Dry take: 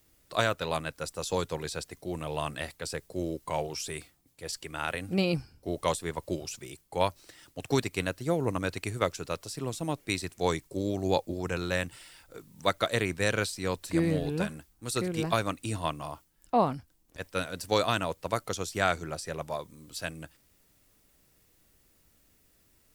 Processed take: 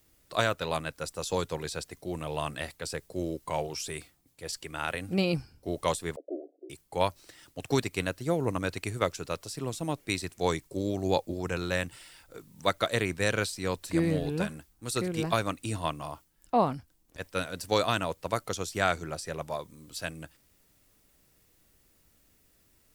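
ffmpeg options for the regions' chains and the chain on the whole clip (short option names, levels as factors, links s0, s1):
-filter_complex "[0:a]asettb=1/sr,asplit=3[s0][s1][s2];[s0]atrim=end=6.164[s3];[s1]atrim=start=6.16:end=6.7,asetpts=PTS-STARTPTS,afade=t=in:d=0.004:c=qsin,afade=t=out:st=0.536:d=0.004:c=qsin,aeval=exprs='clip(val(0),-1,0.02)':c=same,asuperpass=centerf=440:order=20:qfactor=1[s4];[s2]atrim=start=6.696[s5];[s3][s4]acrossfade=d=0.004:c1=hsin:c2=qsin[s6];[s6][s5]acrossfade=d=0.004:c1=qsin:c2=hsin"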